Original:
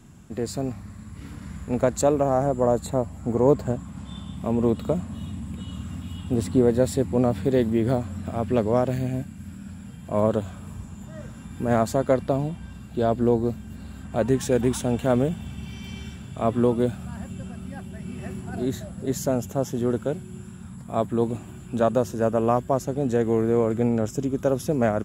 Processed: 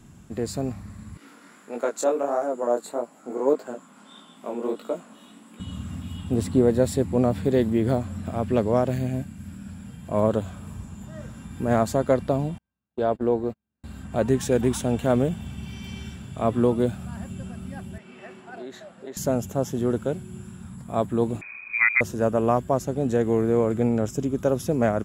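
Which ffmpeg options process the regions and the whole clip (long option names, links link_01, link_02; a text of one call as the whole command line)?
ffmpeg -i in.wav -filter_complex "[0:a]asettb=1/sr,asplit=3[link_01][link_02][link_03];[link_01]atrim=end=1.174[link_04];[link_02]atrim=start=1.17:end=5.6,asetpts=PTS-STARTPTS,afade=type=in:duration=0.004:curve=qsin,afade=type=out:start_time=4.426:duration=0.004:curve=qsin,highpass=frequency=290:width=0.5412,highpass=frequency=290:width=1.3066,equalizer=frequency=1400:width_type=o:width=0.2:gain=6.5,flanger=delay=17:depth=7.8:speed=1.6[link_05];[link_03]atrim=start=5.596[link_06];[link_04][link_05]acrossfade=duration=0.004:curve1=hsin:curve2=qsin[link_07];[link_07][link_06]acrossfade=duration=0.004:curve1=qsin:curve2=hsin,asettb=1/sr,asplit=3[link_08][link_09][link_10];[link_08]atrim=end=12.584[link_11];[link_09]atrim=start=12.58:end=13.84,asetpts=PTS-STARTPTS,afade=type=in:duration=0.004:curve=qsin,afade=type=out:start_time=1.256:duration=0.004:curve=qsin,agate=range=-40dB:threshold=-28dB:ratio=16:release=100:detection=peak,bass=frequency=250:gain=-9,treble=frequency=4000:gain=-11[link_12];[link_10]atrim=start=13.836[link_13];[link_11][link_12]acrossfade=duration=0.004:curve1=hsin:curve2=qsin[link_14];[link_14][link_13]acrossfade=duration=0.004:curve1=qsin:curve2=hsin,asettb=1/sr,asplit=3[link_15][link_16][link_17];[link_15]atrim=end=17.984[link_18];[link_16]atrim=start=17.98:end=19.17,asetpts=PTS-STARTPTS,afade=type=in:duration=0.004:curve=qsin,afade=type=out:start_time=1.186:duration=0.004:curve=qsin,acompressor=threshold=-27dB:ratio=3:attack=3.2:release=140:knee=1:detection=peak,highpass=440,lowpass=2800,aemphasis=mode=production:type=50kf[link_19];[link_17]atrim=start=19.166[link_20];[link_18][link_19]acrossfade=duration=0.004:curve1=hsin:curve2=qsin[link_21];[link_21][link_20]acrossfade=duration=0.004:curve1=qsin:curve2=hsin,asettb=1/sr,asplit=3[link_22][link_23][link_24];[link_22]atrim=end=21.414[link_25];[link_23]atrim=start=21.41:end=22.01,asetpts=PTS-STARTPTS,afade=type=in:duration=0.004:curve=qsin,afade=type=out:start_time=0.596:duration=0.004:curve=qsin,lowpass=frequency=2200:width_type=q:width=0.5098,lowpass=frequency=2200:width_type=q:width=0.6013,lowpass=frequency=2200:width_type=q:width=0.9,lowpass=frequency=2200:width_type=q:width=2.563,afreqshift=-2600,lowshelf=frequency=380:gain=6.5[link_26];[link_24]atrim=start=22.006[link_27];[link_25][link_26]acrossfade=duration=0.004:curve1=hsin:curve2=qsin[link_28];[link_28][link_27]acrossfade=duration=0.004:curve1=qsin:curve2=hsin" out.wav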